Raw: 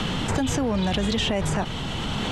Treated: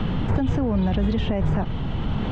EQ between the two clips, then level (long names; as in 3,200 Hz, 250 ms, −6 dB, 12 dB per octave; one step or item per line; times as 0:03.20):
head-to-tape spacing loss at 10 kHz 34 dB
low-shelf EQ 150 Hz +8.5 dB
0.0 dB